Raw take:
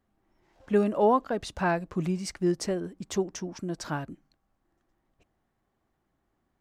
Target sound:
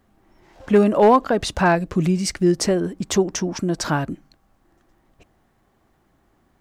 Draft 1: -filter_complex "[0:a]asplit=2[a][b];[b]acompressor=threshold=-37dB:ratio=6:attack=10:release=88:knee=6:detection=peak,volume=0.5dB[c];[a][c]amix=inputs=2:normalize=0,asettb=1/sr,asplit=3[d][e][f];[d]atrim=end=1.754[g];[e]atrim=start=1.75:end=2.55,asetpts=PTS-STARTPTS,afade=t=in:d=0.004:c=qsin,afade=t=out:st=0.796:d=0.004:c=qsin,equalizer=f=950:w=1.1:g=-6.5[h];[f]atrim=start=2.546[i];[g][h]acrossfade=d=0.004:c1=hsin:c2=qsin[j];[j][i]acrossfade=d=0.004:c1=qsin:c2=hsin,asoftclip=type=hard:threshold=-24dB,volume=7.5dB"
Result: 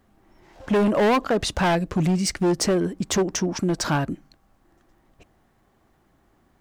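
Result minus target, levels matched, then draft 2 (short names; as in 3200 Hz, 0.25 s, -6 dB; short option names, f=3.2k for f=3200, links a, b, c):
hard clip: distortion +16 dB
-filter_complex "[0:a]asplit=2[a][b];[b]acompressor=threshold=-37dB:ratio=6:attack=10:release=88:knee=6:detection=peak,volume=0.5dB[c];[a][c]amix=inputs=2:normalize=0,asettb=1/sr,asplit=3[d][e][f];[d]atrim=end=1.754[g];[e]atrim=start=1.75:end=2.55,asetpts=PTS-STARTPTS,afade=t=in:d=0.004:c=qsin,afade=t=out:st=0.796:d=0.004:c=qsin,equalizer=f=950:w=1.1:g=-6.5[h];[f]atrim=start=2.546[i];[g][h]acrossfade=d=0.004:c1=hsin:c2=qsin[j];[j][i]acrossfade=d=0.004:c1=qsin:c2=hsin,asoftclip=type=hard:threshold=-14.5dB,volume=7.5dB"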